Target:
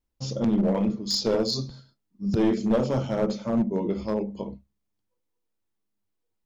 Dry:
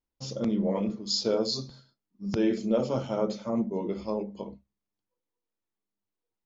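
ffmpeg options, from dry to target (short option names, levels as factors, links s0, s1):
-af "lowshelf=f=180:g=8,aeval=exprs='clip(val(0),-1,0.0794)':c=same,volume=1.33"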